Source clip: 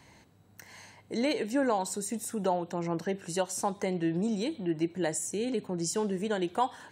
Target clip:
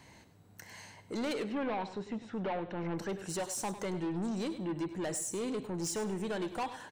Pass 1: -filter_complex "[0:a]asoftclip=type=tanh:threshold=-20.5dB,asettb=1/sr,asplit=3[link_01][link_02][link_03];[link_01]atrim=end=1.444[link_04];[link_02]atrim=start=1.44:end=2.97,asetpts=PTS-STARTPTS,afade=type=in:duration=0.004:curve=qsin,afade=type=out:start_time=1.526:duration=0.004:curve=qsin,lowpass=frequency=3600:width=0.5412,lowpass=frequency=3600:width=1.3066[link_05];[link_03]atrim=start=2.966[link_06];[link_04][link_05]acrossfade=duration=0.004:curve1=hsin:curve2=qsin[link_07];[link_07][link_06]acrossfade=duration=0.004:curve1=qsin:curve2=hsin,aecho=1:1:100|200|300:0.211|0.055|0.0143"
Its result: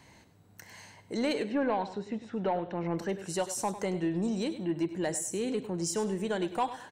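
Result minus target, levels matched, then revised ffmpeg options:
soft clipping: distortion −11 dB
-filter_complex "[0:a]asoftclip=type=tanh:threshold=-31.5dB,asettb=1/sr,asplit=3[link_01][link_02][link_03];[link_01]atrim=end=1.444[link_04];[link_02]atrim=start=1.44:end=2.97,asetpts=PTS-STARTPTS,afade=type=in:duration=0.004:curve=qsin,afade=type=out:start_time=1.526:duration=0.004:curve=qsin,lowpass=frequency=3600:width=0.5412,lowpass=frequency=3600:width=1.3066[link_05];[link_03]atrim=start=2.966[link_06];[link_04][link_05]acrossfade=duration=0.004:curve1=hsin:curve2=qsin[link_07];[link_07][link_06]acrossfade=duration=0.004:curve1=qsin:curve2=hsin,aecho=1:1:100|200|300:0.211|0.055|0.0143"

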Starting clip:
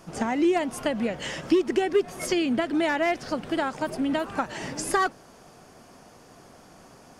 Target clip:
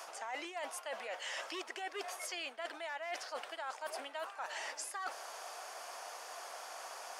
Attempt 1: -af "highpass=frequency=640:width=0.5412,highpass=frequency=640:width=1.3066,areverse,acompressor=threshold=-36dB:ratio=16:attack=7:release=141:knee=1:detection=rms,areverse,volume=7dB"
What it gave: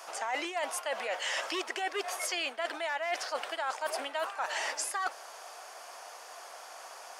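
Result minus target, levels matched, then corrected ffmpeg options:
downward compressor: peak gain reduction −8.5 dB
-af "highpass=frequency=640:width=0.5412,highpass=frequency=640:width=1.3066,areverse,acompressor=threshold=-45dB:ratio=16:attack=7:release=141:knee=1:detection=rms,areverse,volume=7dB"

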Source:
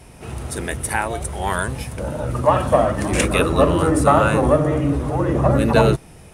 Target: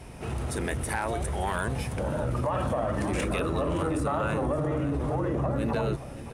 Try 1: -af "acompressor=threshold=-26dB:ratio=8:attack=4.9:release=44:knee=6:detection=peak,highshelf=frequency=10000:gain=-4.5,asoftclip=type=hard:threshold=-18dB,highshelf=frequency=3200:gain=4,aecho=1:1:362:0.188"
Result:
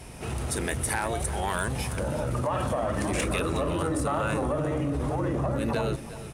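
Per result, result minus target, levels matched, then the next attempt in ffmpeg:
echo 206 ms early; 8,000 Hz band +6.0 dB
-af "acompressor=threshold=-26dB:ratio=8:attack=4.9:release=44:knee=6:detection=peak,highshelf=frequency=10000:gain=-4.5,asoftclip=type=hard:threshold=-18dB,highshelf=frequency=3200:gain=4,aecho=1:1:568:0.188"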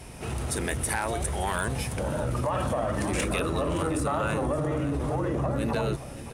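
8,000 Hz band +6.0 dB
-af "acompressor=threshold=-26dB:ratio=8:attack=4.9:release=44:knee=6:detection=peak,highshelf=frequency=10000:gain=-4.5,asoftclip=type=hard:threshold=-18dB,highshelf=frequency=3200:gain=-3.5,aecho=1:1:568:0.188"

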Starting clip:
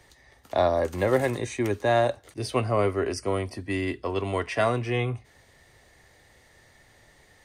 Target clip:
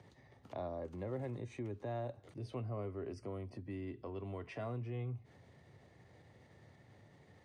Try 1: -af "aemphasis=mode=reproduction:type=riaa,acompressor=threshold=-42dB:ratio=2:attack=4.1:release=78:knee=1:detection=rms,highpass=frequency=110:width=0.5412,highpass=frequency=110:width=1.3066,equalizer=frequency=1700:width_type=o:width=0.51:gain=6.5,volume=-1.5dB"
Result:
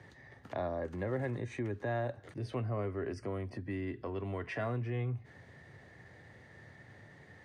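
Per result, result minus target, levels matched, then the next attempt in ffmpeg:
2,000 Hz band +6.5 dB; downward compressor: peak gain reduction −5.5 dB
-af "aemphasis=mode=reproduction:type=riaa,acompressor=threshold=-42dB:ratio=2:attack=4.1:release=78:knee=1:detection=rms,highpass=frequency=110:width=0.5412,highpass=frequency=110:width=1.3066,equalizer=frequency=1700:width_type=o:width=0.51:gain=-4,volume=-1.5dB"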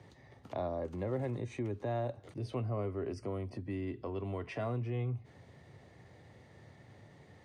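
downward compressor: peak gain reduction −5.5 dB
-af "aemphasis=mode=reproduction:type=riaa,acompressor=threshold=-53dB:ratio=2:attack=4.1:release=78:knee=1:detection=rms,highpass=frequency=110:width=0.5412,highpass=frequency=110:width=1.3066,equalizer=frequency=1700:width_type=o:width=0.51:gain=-4,volume=-1.5dB"

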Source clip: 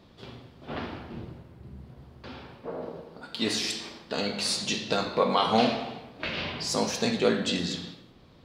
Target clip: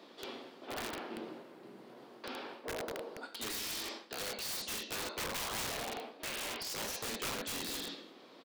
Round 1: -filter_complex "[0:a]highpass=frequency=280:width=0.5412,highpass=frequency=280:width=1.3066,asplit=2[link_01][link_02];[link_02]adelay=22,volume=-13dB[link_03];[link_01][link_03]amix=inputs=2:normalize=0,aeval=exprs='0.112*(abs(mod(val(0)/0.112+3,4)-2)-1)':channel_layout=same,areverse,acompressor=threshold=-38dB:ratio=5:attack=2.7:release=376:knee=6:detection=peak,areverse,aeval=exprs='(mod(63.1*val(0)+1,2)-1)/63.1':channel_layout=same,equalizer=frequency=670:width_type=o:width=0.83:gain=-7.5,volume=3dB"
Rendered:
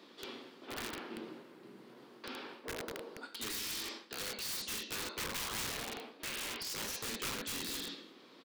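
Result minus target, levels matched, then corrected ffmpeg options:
500 Hz band −3.0 dB
-filter_complex "[0:a]highpass=frequency=280:width=0.5412,highpass=frequency=280:width=1.3066,asplit=2[link_01][link_02];[link_02]adelay=22,volume=-13dB[link_03];[link_01][link_03]amix=inputs=2:normalize=0,aeval=exprs='0.112*(abs(mod(val(0)/0.112+3,4)-2)-1)':channel_layout=same,areverse,acompressor=threshold=-38dB:ratio=5:attack=2.7:release=376:knee=6:detection=peak,areverse,aeval=exprs='(mod(63.1*val(0)+1,2)-1)/63.1':channel_layout=same,volume=3dB"

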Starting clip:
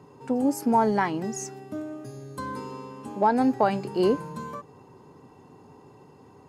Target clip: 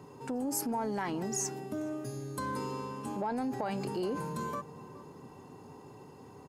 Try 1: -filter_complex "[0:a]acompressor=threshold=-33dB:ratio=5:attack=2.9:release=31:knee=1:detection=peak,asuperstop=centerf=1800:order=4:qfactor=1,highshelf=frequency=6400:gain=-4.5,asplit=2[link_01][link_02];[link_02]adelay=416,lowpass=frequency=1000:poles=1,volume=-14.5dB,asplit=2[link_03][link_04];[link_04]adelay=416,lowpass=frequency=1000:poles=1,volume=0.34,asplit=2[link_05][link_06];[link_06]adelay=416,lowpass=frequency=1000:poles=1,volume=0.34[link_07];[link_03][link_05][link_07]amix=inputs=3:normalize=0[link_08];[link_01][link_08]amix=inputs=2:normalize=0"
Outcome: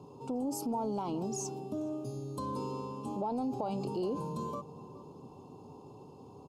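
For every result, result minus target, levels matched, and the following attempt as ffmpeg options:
2,000 Hz band −16.5 dB; 8,000 Hz band −5.5 dB
-filter_complex "[0:a]acompressor=threshold=-33dB:ratio=5:attack=2.9:release=31:knee=1:detection=peak,highshelf=frequency=6400:gain=-4.5,asplit=2[link_01][link_02];[link_02]adelay=416,lowpass=frequency=1000:poles=1,volume=-14.5dB,asplit=2[link_03][link_04];[link_04]adelay=416,lowpass=frequency=1000:poles=1,volume=0.34,asplit=2[link_05][link_06];[link_06]adelay=416,lowpass=frequency=1000:poles=1,volume=0.34[link_07];[link_03][link_05][link_07]amix=inputs=3:normalize=0[link_08];[link_01][link_08]amix=inputs=2:normalize=0"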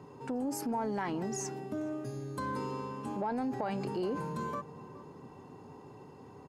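8,000 Hz band −6.0 dB
-filter_complex "[0:a]acompressor=threshold=-33dB:ratio=5:attack=2.9:release=31:knee=1:detection=peak,highshelf=frequency=6400:gain=7,asplit=2[link_01][link_02];[link_02]adelay=416,lowpass=frequency=1000:poles=1,volume=-14.5dB,asplit=2[link_03][link_04];[link_04]adelay=416,lowpass=frequency=1000:poles=1,volume=0.34,asplit=2[link_05][link_06];[link_06]adelay=416,lowpass=frequency=1000:poles=1,volume=0.34[link_07];[link_03][link_05][link_07]amix=inputs=3:normalize=0[link_08];[link_01][link_08]amix=inputs=2:normalize=0"

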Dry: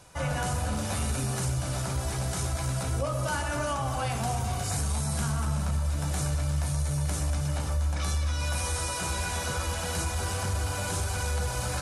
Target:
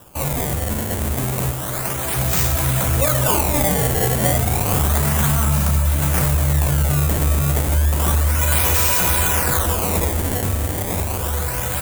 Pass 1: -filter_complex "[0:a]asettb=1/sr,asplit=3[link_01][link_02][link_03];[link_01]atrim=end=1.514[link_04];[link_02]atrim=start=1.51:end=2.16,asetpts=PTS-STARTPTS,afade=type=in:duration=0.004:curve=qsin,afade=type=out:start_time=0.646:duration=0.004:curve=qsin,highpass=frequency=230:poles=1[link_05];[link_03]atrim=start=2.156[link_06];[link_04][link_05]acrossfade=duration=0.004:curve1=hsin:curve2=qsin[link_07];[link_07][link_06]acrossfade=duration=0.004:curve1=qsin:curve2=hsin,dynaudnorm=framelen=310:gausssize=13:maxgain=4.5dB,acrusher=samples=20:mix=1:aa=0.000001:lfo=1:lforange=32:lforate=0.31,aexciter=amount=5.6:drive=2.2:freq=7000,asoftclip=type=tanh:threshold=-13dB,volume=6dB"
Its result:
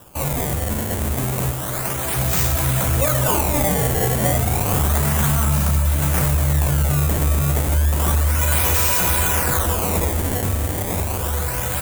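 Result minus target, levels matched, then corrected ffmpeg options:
soft clipping: distortion +13 dB
-filter_complex "[0:a]asettb=1/sr,asplit=3[link_01][link_02][link_03];[link_01]atrim=end=1.514[link_04];[link_02]atrim=start=1.51:end=2.16,asetpts=PTS-STARTPTS,afade=type=in:duration=0.004:curve=qsin,afade=type=out:start_time=0.646:duration=0.004:curve=qsin,highpass=frequency=230:poles=1[link_05];[link_03]atrim=start=2.156[link_06];[link_04][link_05]acrossfade=duration=0.004:curve1=hsin:curve2=qsin[link_07];[link_07][link_06]acrossfade=duration=0.004:curve1=qsin:curve2=hsin,dynaudnorm=framelen=310:gausssize=13:maxgain=4.5dB,acrusher=samples=20:mix=1:aa=0.000001:lfo=1:lforange=32:lforate=0.31,aexciter=amount=5.6:drive=2.2:freq=7000,asoftclip=type=tanh:threshold=-4.5dB,volume=6dB"

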